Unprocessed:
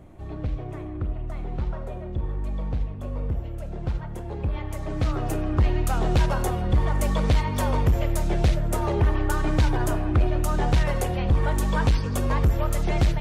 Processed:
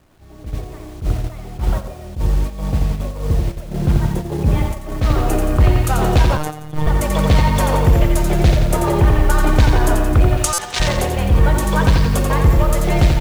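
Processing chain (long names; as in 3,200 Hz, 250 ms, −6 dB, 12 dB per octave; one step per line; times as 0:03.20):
0:10.37–0:10.80: meter weighting curve ITU-R 468
bit reduction 8 bits
repeating echo 87 ms, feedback 54%, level −5 dB
0:06.37–0:06.87: phases set to zero 152 Hz
automatic gain control gain up to 10.5 dB
0:03.66–0:04.72: dynamic equaliser 190 Hz, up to +6 dB, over −32 dBFS, Q 0.73
noise gate −18 dBFS, range −9 dB
buffer that repeats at 0:10.53, samples 256, times 8
level that may rise only so fast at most 230 dB per second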